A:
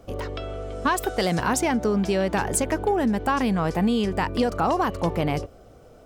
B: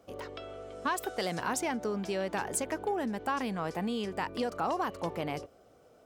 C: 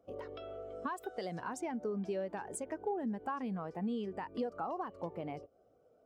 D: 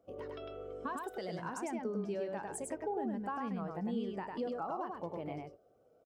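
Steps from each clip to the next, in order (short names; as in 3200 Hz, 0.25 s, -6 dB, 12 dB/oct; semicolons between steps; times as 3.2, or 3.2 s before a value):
HPF 280 Hz 6 dB/oct; gain -8 dB
compressor 2.5:1, threshold -42 dBFS, peak gain reduction 10.5 dB; spectral expander 1.5:1; gain +1 dB
echo 0.102 s -3 dB; on a send at -19 dB: reverb, pre-delay 6 ms; on the sum: gain -1.5 dB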